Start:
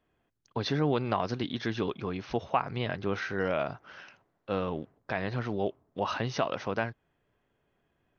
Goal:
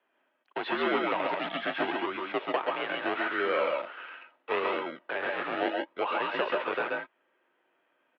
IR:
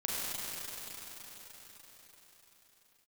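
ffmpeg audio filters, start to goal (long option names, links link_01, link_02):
-filter_complex "[0:a]acrossover=split=610[link_01][link_02];[link_01]acrusher=samples=34:mix=1:aa=0.000001:lfo=1:lforange=20.4:lforate=0.79[link_03];[link_02]asoftclip=type=tanh:threshold=-30.5dB[link_04];[link_03][link_04]amix=inputs=2:normalize=0,aecho=1:1:129|138|141:0.447|0.562|0.473,asettb=1/sr,asplit=3[link_05][link_06][link_07];[link_05]atrim=end=3.774[link_08];[link_06]atrim=start=3.77:end=4.8,asetpts=PTS-STARTPTS,afade=type=in:duration=0.004:curve=qsin,afade=type=out:start_time=1.026:duration=0.004:curve=qsin,acrusher=bits=2:mode=log:mix=0:aa=0.000001[link_09];[link_07]atrim=start=4.796[link_10];[link_08][link_09]acrossfade=duration=0.004:curve1=hsin:curve2=qsin[link_11];[link_11][link_10]acrossfade=duration=0.004:curve1=qsin:curve2=hsin,highpass=frequency=440:width_type=q:width=0.5412,highpass=frequency=440:width_type=q:width=1.307,lowpass=frequency=3200:width_type=q:width=0.5176,lowpass=frequency=3200:width_type=q:width=0.7071,lowpass=frequency=3200:width_type=q:width=1.932,afreqshift=-69,volume=4.5dB"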